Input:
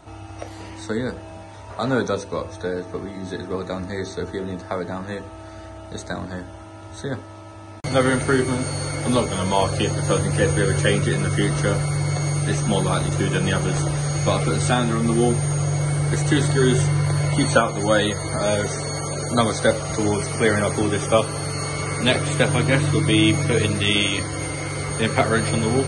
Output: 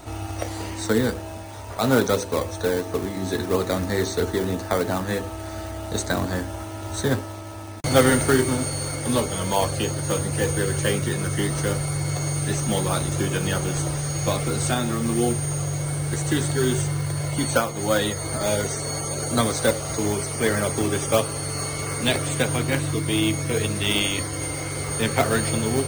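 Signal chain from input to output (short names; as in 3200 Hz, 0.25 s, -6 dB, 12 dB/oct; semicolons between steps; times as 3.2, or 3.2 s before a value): in parallel at -9 dB: decimation with a swept rate 23×, swing 100% 3 Hz; on the sum: bell 170 Hz -7.5 dB 0.23 oct; vocal rider 2 s; high shelf 6600 Hz +10.5 dB; gain -5 dB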